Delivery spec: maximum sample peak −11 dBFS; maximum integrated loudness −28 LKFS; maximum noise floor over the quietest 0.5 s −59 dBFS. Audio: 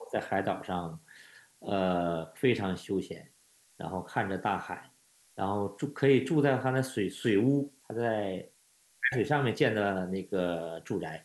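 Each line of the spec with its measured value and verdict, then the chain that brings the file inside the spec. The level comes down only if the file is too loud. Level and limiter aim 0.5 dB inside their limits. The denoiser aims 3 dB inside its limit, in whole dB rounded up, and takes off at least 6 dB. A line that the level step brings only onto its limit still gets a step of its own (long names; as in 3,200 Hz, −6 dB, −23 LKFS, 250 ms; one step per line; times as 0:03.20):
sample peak −12.0 dBFS: in spec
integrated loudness −30.5 LKFS: in spec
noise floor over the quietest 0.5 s −66 dBFS: in spec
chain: no processing needed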